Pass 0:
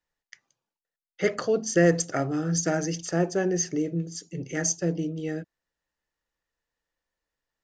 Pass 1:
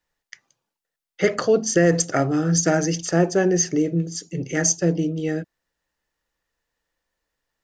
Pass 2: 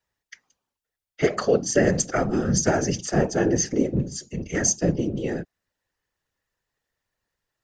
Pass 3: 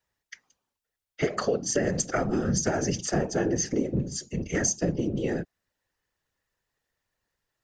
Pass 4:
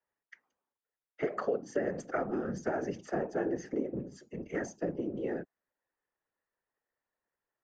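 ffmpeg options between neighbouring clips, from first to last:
-af "alimiter=level_in=3.98:limit=0.891:release=50:level=0:latency=1,volume=0.531"
-af "afftfilt=real='hypot(re,im)*cos(2*PI*random(0))':imag='hypot(re,im)*sin(2*PI*random(1))':win_size=512:overlap=0.75,volume=1.5"
-af "acompressor=threshold=0.0794:ratio=6"
-filter_complex "[0:a]acrossover=split=230 2100:gain=0.2 1 0.0891[s0][s1][s2];[s0][s1][s2]amix=inputs=3:normalize=0,volume=0.596"

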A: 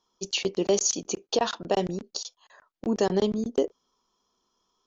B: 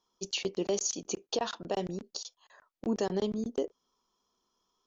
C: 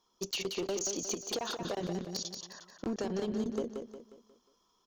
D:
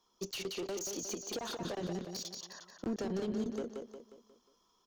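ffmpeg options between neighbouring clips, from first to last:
-af "alimiter=limit=0.15:level=0:latency=1:release=283,volume=0.631"
-af "acompressor=threshold=0.02:ratio=8,asoftclip=type=hard:threshold=0.0224,aecho=1:1:179|358|537|716|895:0.501|0.205|0.0842|0.0345|0.0142,volume=1.58"
-filter_complex "[0:a]acrossover=split=350[s0][s1];[s0]tremolo=f=0.65:d=0.46[s2];[s1]asoftclip=type=tanh:threshold=0.0141[s3];[s2][s3]amix=inputs=2:normalize=0"

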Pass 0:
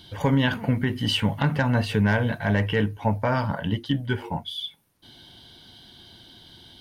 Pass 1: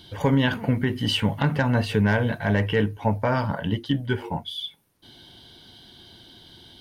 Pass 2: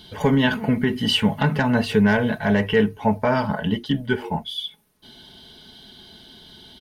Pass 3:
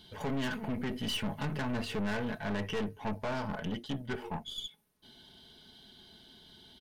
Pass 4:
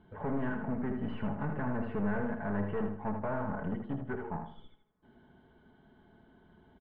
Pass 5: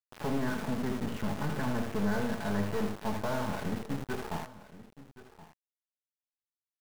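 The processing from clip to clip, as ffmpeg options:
-af "equalizer=f=400:t=o:w=0.77:g=3"
-af "aecho=1:1:4.7:0.55,volume=1.26"
-af "aeval=exprs='(tanh(14.1*val(0)+0.55)-tanh(0.55))/14.1':c=same,volume=0.398"
-filter_complex "[0:a]lowpass=f=1600:w=0.5412,lowpass=f=1600:w=1.3066,asplit=2[s0][s1];[s1]aecho=0:1:79|158|237|316:0.473|0.147|0.0455|0.0141[s2];[s0][s2]amix=inputs=2:normalize=0"
-af "aeval=exprs='val(0)*gte(abs(val(0)),0.0126)':c=same,aecho=1:1:1073:0.141,volume=1.26"

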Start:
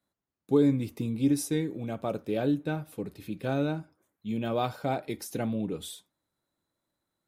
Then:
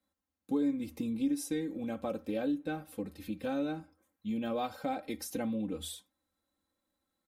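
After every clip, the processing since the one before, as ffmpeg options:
-af "equalizer=f=80:t=o:w=0.24:g=8.5,aecho=1:1:3.8:0.87,acompressor=threshold=0.0316:ratio=2,volume=0.668"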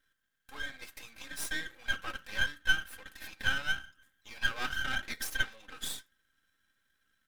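-af "highpass=f=1600:t=q:w=11,aeval=exprs='max(val(0),0)':c=same,volume=2.37"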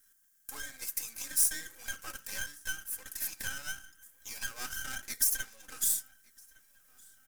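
-filter_complex "[0:a]acompressor=threshold=0.00794:ratio=2,aexciter=amount=10:drive=2.8:freq=5300,asplit=2[s0][s1];[s1]adelay=1161,lowpass=f=4800:p=1,volume=0.0668,asplit=2[s2][s3];[s3]adelay=1161,lowpass=f=4800:p=1,volume=0.52,asplit=2[s4][s5];[s5]adelay=1161,lowpass=f=4800:p=1,volume=0.52[s6];[s0][s2][s4][s6]amix=inputs=4:normalize=0"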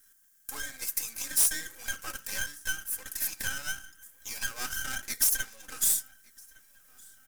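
-af "asoftclip=type=hard:threshold=0.0841,volume=1.68"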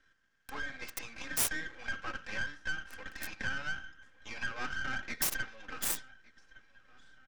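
-filter_complex "[0:a]acrossover=split=190|3800[s0][s1][s2];[s1]aecho=1:1:85:0.0631[s3];[s2]acrusher=bits=2:mix=0:aa=0.5[s4];[s0][s3][s4]amix=inputs=3:normalize=0,aeval=exprs='(tanh(20*val(0)+0.5)-tanh(0.5))/20':c=same,volume=1.88"

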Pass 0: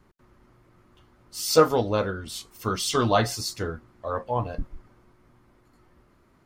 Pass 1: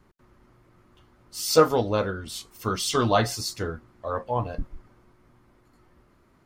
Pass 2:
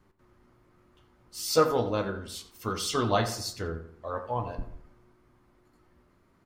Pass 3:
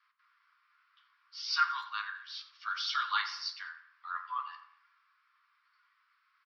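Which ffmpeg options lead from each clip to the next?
-af anull
-filter_complex "[0:a]flanger=delay=9.9:depth=7.7:regen=73:speed=0.31:shape=triangular,asplit=2[s0][s1];[s1]adelay=86,lowpass=f=2400:p=1,volume=0.299,asplit=2[s2][s3];[s3]adelay=86,lowpass=f=2400:p=1,volume=0.42,asplit=2[s4][s5];[s5]adelay=86,lowpass=f=2400:p=1,volume=0.42,asplit=2[s6][s7];[s7]adelay=86,lowpass=f=2400:p=1,volume=0.42[s8];[s2][s4][s6][s8]amix=inputs=4:normalize=0[s9];[s0][s9]amix=inputs=2:normalize=0"
-filter_complex "[0:a]afreqshift=150,asuperpass=centerf=2400:order=20:qfactor=0.55,asplit=2[s0][s1];[s1]adelay=210,highpass=300,lowpass=3400,asoftclip=type=hard:threshold=0.0562,volume=0.0631[s2];[s0][s2]amix=inputs=2:normalize=0"

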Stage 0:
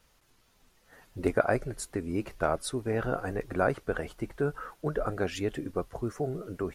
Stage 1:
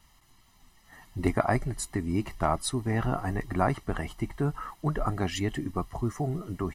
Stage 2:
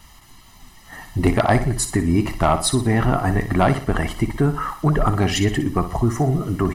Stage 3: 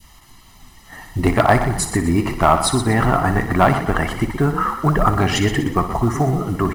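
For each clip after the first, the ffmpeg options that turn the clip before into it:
-af "aecho=1:1:1:0.77,volume=1.26"
-filter_complex "[0:a]asplit=2[s0][s1];[s1]acompressor=threshold=0.02:ratio=6,volume=0.708[s2];[s0][s2]amix=inputs=2:normalize=0,aeval=exprs='0.398*sin(PI/2*1.78*val(0)/0.398)':c=same,aecho=1:1:60|120|180|240:0.282|0.118|0.0497|0.0209"
-filter_complex "[0:a]adynamicequalizer=threshold=0.0251:dfrequency=1200:dqfactor=0.81:tfrequency=1200:tqfactor=0.81:attack=5:release=100:ratio=0.375:range=3:mode=boostabove:tftype=bell,asplit=5[s0][s1][s2][s3][s4];[s1]adelay=122,afreqshift=35,volume=0.282[s5];[s2]adelay=244,afreqshift=70,volume=0.11[s6];[s3]adelay=366,afreqshift=105,volume=0.0427[s7];[s4]adelay=488,afreqshift=140,volume=0.0168[s8];[s0][s5][s6][s7][s8]amix=inputs=5:normalize=0,acrusher=bits=8:mode=log:mix=0:aa=0.000001"

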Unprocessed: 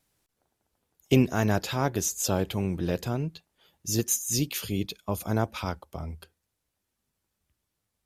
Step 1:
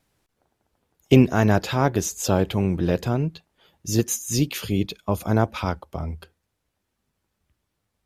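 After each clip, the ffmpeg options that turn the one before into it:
-af "highshelf=f=4500:g=-9,volume=2.11"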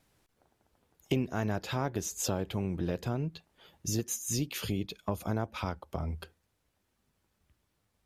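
-af "acompressor=threshold=0.0251:ratio=3"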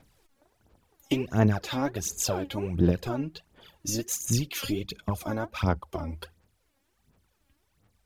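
-af "aphaser=in_gain=1:out_gain=1:delay=3.7:decay=0.71:speed=1.4:type=sinusoidal,volume=1.19"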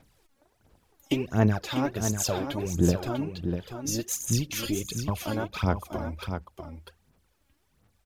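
-af "aecho=1:1:646:0.422"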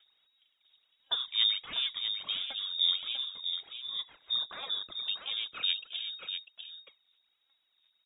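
-af "lowpass=f=3200:t=q:w=0.5098,lowpass=f=3200:t=q:w=0.6013,lowpass=f=3200:t=q:w=0.9,lowpass=f=3200:t=q:w=2.563,afreqshift=-3800,volume=0.501"

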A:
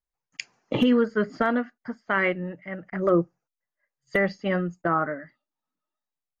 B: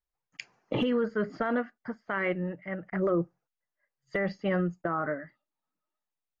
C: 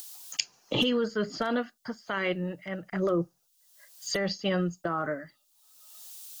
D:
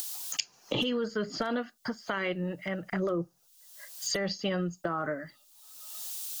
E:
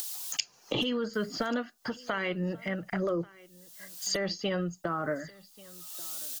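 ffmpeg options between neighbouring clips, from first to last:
-af "lowpass=f=2700:p=1,equalizer=f=250:w=6.9:g=-5.5,alimiter=limit=0.106:level=0:latency=1:release=22"
-filter_complex "[0:a]acrossover=split=480[s0][s1];[s1]acompressor=mode=upward:threshold=0.01:ratio=2.5[s2];[s0][s2]amix=inputs=2:normalize=0,aexciter=amount=6.6:drive=5.9:freq=3000"
-af "acompressor=threshold=0.00891:ratio=2.5,volume=2.51"
-af "aecho=1:1:1136:0.0708,aphaser=in_gain=1:out_gain=1:delay=4.4:decay=0.2:speed=0.39:type=triangular"

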